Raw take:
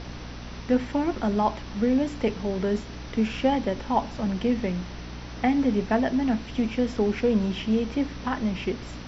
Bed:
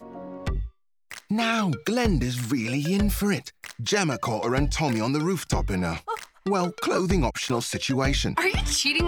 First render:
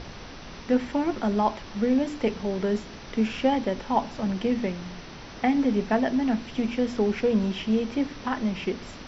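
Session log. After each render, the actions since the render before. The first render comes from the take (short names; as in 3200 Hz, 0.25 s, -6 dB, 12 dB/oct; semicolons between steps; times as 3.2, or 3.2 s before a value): de-hum 60 Hz, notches 5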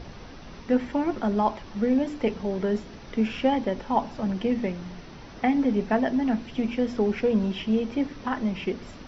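denoiser 6 dB, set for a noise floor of -42 dBFS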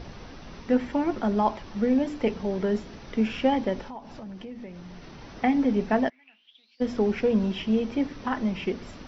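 3.87–5.21 compressor 4:1, threshold -39 dBFS; 6.08–6.8 band-pass 2000 Hz -> 4800 Hz, Q 16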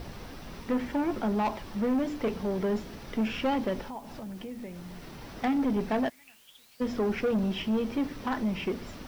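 soft clip -22.5 dBFS, distortion -11 dB; requantised 10-bit, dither triangular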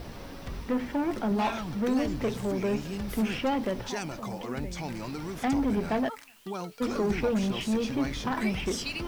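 add bed -12 dB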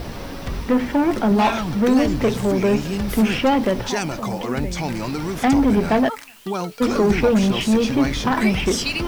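gain +10.5 dB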